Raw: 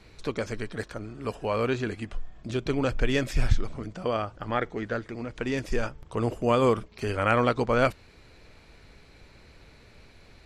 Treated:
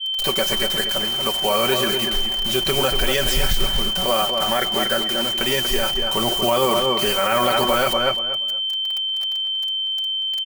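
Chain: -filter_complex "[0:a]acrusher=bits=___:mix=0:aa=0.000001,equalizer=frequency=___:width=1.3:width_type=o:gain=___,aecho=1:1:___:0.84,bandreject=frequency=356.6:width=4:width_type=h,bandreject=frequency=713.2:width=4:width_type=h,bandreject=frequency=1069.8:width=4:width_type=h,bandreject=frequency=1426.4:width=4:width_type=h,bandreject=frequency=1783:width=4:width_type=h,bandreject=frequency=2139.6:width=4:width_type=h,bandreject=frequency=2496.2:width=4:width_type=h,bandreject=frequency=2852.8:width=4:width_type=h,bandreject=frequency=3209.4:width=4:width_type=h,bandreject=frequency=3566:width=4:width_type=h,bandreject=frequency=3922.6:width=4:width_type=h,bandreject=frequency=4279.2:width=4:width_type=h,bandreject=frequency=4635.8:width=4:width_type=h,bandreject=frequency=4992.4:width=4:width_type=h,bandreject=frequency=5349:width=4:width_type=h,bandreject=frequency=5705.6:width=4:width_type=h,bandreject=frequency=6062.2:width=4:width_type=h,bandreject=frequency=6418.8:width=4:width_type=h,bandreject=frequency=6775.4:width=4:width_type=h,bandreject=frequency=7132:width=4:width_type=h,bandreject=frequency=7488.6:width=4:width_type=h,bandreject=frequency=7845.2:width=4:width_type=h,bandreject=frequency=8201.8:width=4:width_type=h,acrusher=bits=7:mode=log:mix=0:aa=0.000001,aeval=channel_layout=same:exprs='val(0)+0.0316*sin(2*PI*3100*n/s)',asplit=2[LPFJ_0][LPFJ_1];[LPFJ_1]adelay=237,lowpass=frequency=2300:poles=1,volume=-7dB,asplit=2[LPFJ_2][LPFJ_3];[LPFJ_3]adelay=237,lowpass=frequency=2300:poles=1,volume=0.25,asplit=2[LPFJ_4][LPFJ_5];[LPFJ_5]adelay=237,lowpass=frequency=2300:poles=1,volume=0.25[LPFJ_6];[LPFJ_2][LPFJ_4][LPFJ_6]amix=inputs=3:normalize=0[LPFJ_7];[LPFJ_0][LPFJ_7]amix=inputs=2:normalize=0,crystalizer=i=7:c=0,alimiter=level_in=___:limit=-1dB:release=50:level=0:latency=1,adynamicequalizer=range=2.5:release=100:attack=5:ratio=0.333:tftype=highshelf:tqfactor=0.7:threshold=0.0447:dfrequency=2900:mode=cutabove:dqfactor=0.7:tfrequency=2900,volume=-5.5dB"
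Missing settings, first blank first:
6, 750, 7, 5.3, 6.5dB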